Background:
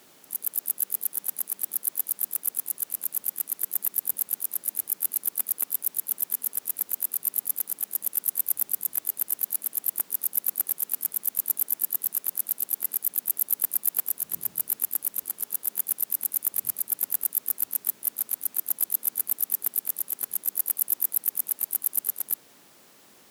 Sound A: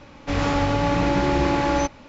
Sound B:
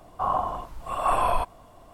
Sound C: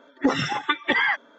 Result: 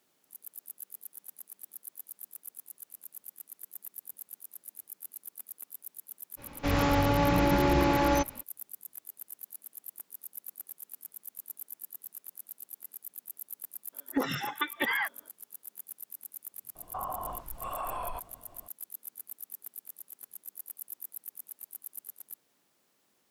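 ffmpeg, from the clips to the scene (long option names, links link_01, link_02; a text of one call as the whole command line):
ffmpeg -i bed.wav -i cue0.wav -i cue1.wav -i cue2.wav -filter_complex "[0:a]volume=-17.5dB[link_01];[2:a]acompressor=threshold=-27dB:ratio=6:attack=3.2:release=140:knee=1:detection=peak[link_02];[1:a]atrim=end=2.08,asetpts=PTS-STARTPTS,volume=-4dB,afade=type=in:duration=0.05,afade=type=out:start_time=2.03:duration=0.05,adelay=6360[link_03];[3:a]atrim=end=1.38,asetpts=PTS-STARTPTS,volume=-8.5dB,afade=type=in:duration=0.02,afade=type=out:start_time=1.36:duration=0.02,adelay=13920[link_04];[link_02]atrim=end=1.93,asetpts=PTS-STARTPTS,volume=-5.5dB,afade=type=in:duration=0.004:curve=hsin,afade=type=out:start_time=1.926:duration=0.004:curve=hsin,adelay=16750[link_05];[link_01][link_03][link_04][link_05]amix=inputs=4:normalize=0" out.wav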